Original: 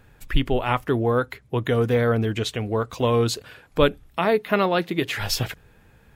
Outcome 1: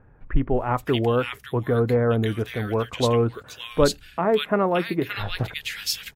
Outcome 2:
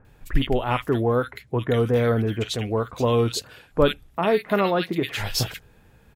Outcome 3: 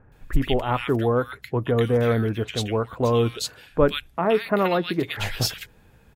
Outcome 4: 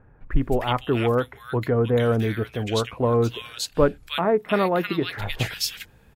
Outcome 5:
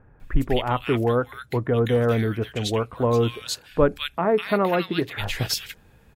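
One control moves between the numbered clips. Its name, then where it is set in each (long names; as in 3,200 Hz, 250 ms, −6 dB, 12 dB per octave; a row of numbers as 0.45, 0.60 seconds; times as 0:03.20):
multiband delay without the direct sound, delay time: 570, 50, 120, 310, 200 milliseconds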